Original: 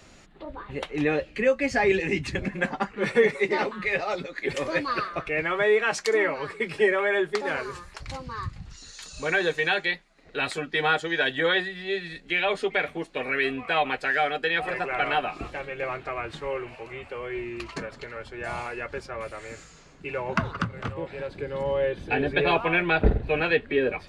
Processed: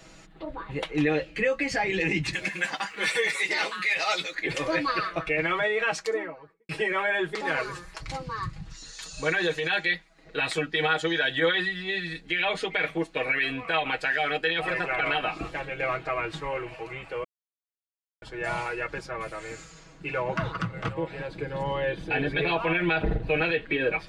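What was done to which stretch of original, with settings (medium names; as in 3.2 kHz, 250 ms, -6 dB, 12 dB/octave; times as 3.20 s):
2.33–4.35 s: tilt EQ +4.5 dB/octave
5.59–6.69 s: studio fade out
17.24–18.22 s: mute
whole clip: dynamic bell 3 kHz, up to +4 dB, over -37 dBFS, Q 0.81; peak limiter -18 dBFS; comb 6.2 ms, depth 68%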